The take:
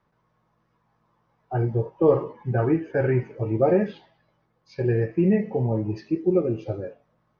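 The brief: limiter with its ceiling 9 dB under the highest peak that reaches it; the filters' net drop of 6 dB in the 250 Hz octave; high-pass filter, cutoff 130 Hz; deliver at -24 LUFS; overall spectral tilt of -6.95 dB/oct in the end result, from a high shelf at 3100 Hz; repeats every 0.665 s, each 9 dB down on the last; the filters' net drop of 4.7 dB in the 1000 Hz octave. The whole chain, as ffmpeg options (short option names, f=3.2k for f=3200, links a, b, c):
-af "highpass=130,equalizer=f=250:t=o:g=-8.5,equalizer=f=1k:t=o:g=-5.5,highshelf=f=3.1k:g=-8,alimiter=limit=-19.5dB:level=0:latency=1,aecho=1:1:665|1330|1995|2660:0.355|0.124|0.0435|0.0152,volume=7dB"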